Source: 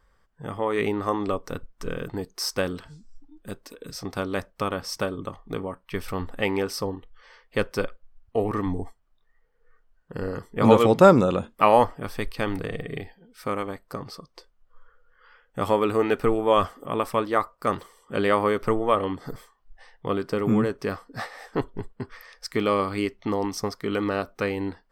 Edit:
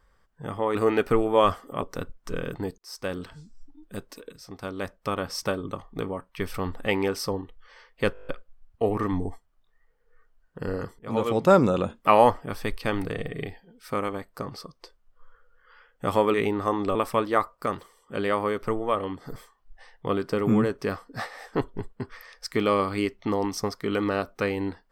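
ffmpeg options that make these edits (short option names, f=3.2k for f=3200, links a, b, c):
-filter_complex "[0:a]asplit=18[a][b][c][d][e][f][g][h][i][j][k][l][m][n][o][p][q][r];[a]atrim=end=0.752[s];[b]atrim=start=15.878:end=16.952[t];[c]atrim=start=1.358:end=2.32,asetpts=PTS-STARTPTS,afade=t=out:st=0.958:d=0.004:c=hsin[u];[d]atrim=start=2.32:end=3.86,asetpts=PTS-STARTPTS,afade=t=in:d=0.55,afade=t=out:st=1.536:d=0.004:c=hsin:silence=0.237137[v];[e]atrim=start=3.86:end=7.692,asetpts=PTS-STARTPTS,afade=t=in:d=0.97:silence=0.237137[w];[f]atrim=start=7.668:end=7.692[x];[g]atrim=start=7.668:end=7.692[y];[h]atrim=start=7.668:end=7.692[z];[i]atrim=start=7.668:end=7.692[aa];[j]atrim=start=7.668:end=7.692[ab];[k]atrim=start=7.668:end=7.692[ac];[l]atrim=start=7.668:end=7.692[ad];[m]atrim=start=7.828:end=10.53,asetpts=PTS-STARTPTS,afade=t=out:st=2.698:d=0.004:c=hsin:silence=0.0841395[ae];[n]atrim=start=10.53:end=15.882,asetpts=PTS-STARTPTS,afade=t=in:d=1.23:c=qsin:silence=0.0841395[af];[o]atrim=start=0.748:end=1.362[ag];[p]atrim=start=16.948:end=17.662[ah];[q]atrim=start=17.658:end=19.312,asetpts=PTS-STARTPTS,volume=-4dB[ai];[r]atrim=start=19.308[aj];[s][t]acrossfade=d=0.004:c1=hsin:c2=hsin[ak];[u][v][w]concat=n=3:v=0:a=1[al];[ak][al]acrossfade=d=0.004:c1=hsin:c2=hsin[am];[am][x]acrossfade=d=0.004:c1=hsin:c2=hsin[an];[an][y]acrossfade=d=0.004:c1=hsin:c2=hsin[ao];[ao][z]acrossfade=d=0.004:c1=hsin:c2=hsin[ap];[ap][aa]acrossfade=d=0.004:c1=hsin:c2=hsin[aq];[aq][ab]acrossfade=d=0.004:c1=hsin:c2=hsin[ar];[ar][ac]acrossfade=d=0.004:c1=hsin:c2=hsin[as];[as][ad]acrossfade=d=0.004:c1=hsin:c2=hsin[at];[ae][af]concat=n=2:v=0:a=1[au];[at][au]acrossfade=d=0.004:c1=hsin:c2=hsin[av];[av][ag]acrossfade=d=0.004:c1=hsin:c2=hsin[aw];[aw][ah]acrossfade=d=0.004:c1=hsin:c2=hsin[ax];[ax][ai]acrossfade=d=0.004:c1=hsin:c2=hsin[ay];[ay][aj]acrossfade=d=0.004:c1=hsin:c2=hsin"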